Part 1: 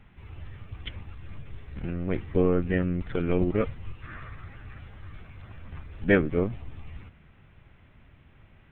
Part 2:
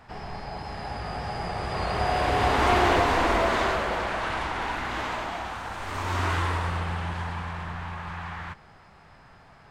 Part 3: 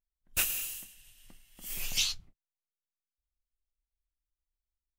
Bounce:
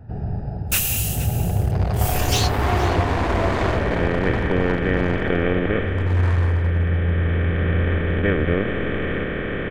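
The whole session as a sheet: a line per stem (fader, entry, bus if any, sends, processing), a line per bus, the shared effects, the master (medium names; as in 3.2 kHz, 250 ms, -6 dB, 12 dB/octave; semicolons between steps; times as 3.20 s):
-5.5 dB, 2.15 s, no send, no echo send, spectral levelling over time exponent 0.2
+2.5 dB, 0.00 s, no send, no echo send, local Wiener filter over 41 samples; peaking EQ 100 Hz +13 dB 1.7 oct
+1.0 dB, 0.35 s, no send, echo send -17 dB, waveshaping leveller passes 3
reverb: none
echo: delay 469 ms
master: gain riding within 4 dB 0.5 s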